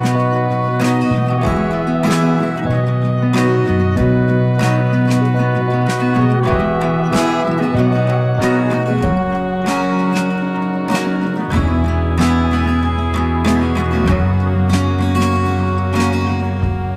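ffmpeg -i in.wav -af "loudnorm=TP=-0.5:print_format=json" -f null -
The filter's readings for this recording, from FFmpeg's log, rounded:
"input_i" : "-16.0",
"input_tp" : "-3.8",
"input_lra" : "1.7",
"input_thresh" : "-26.0",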